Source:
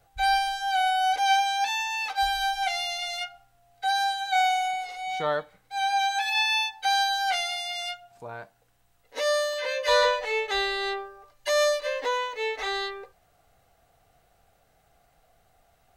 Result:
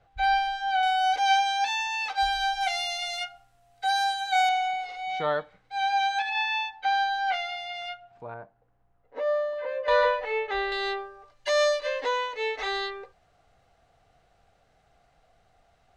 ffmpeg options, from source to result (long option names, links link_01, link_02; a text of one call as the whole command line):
ffmpeg -i in.wav -af "asetnsamples=nb_out_samples=441:pad=0,asendcmd='0.83 lowpass f 6400;2.61 lowpass f 11000;4.49 lowpass f 4200;6.22 lowpass f 2500;8.34 lowpass f 1100;9.88 lowpass f 2200;10.72 lowpass f 5800',lowpass=3300" out.wav